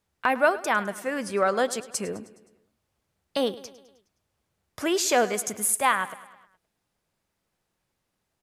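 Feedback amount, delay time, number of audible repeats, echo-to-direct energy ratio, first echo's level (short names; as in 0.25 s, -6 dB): 56%, 0.104 s, 4, -16.0 dB, -17.5 dB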